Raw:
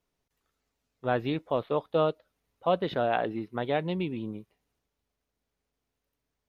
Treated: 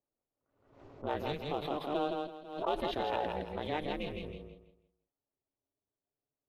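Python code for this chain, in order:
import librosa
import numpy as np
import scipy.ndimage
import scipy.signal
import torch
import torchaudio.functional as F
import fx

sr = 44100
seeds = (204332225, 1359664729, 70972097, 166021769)

p1 = fx.spec_quant(x, sr, step_db=15)
p2 = fx.env_lowpass(p1, sr, base_hz=680.0, full_db=-27.0)
p3 = scipy.signal.sosfilt(scipy.signal.butter(2, 210.0, 'highpass', fs=sr, output='sos'), p2)
p4 = fx.high_shelf(p3, sr, hz=3400.0, db=10.5)
p5 = fx.notch(p4, sr, hz=1500.0, q=9.4)
p6 = 10.0 ** (-32.0 / 20.0) * np.tanh(p5 / 10.0 ** (-32.0 / 20.0))
p7 = p5 + (p6 * librosa.db_to_amplitude(-7.5))
p8 = p7 * np.sin(2.0 * np.pi * 150.0 * np.arange(len(p7)) / sr)
p9 = fx.echo_feedback(p8, sr, ms=164, feedback_pct=28, wet_db=-4.0)
p10 = fx.pre_swell(p9, sr, db_per_s=80.0)
y = p10 * librosa.db_to_amplitude(-6.5)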